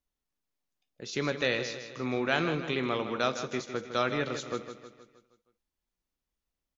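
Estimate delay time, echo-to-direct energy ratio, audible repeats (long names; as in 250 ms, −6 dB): 157 ms, −8.5 dB, 5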